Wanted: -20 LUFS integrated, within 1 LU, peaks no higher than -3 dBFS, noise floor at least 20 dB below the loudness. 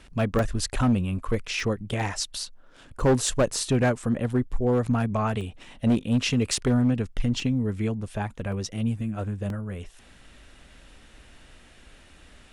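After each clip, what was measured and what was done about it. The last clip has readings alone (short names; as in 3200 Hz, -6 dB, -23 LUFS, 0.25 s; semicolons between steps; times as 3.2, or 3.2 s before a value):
clipped 1.1%; flat tops at -15.5 dBFS; dropouts 8; longest dropout 1.9 ms; loudness -26.5 LUFS; peak -15.5 dBFS; loudness target -20.0 LUFS
-> clip repair -15.5 dBFS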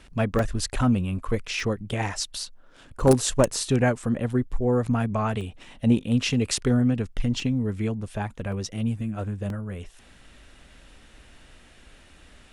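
clipped 0.0%; dropouts 8; longest dropout 1.9 ms
-> interpolate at 0.39/1.6/3/3.54/5.41/7.4/8.52/9.5, 1.9 ms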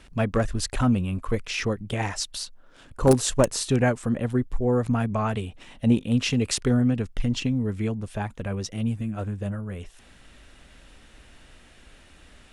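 dropouts 0; loudness -25.5 LUFS; peak -6.5 dBFS; loudness target -20.0 LUFS
-> gain +5.5 dB; limiter -3 dBFS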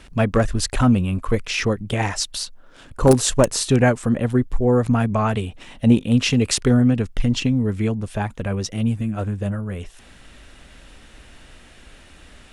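loudness -20.5 LUFS; peak -3.0 dBFS; noise floor -47 dBFS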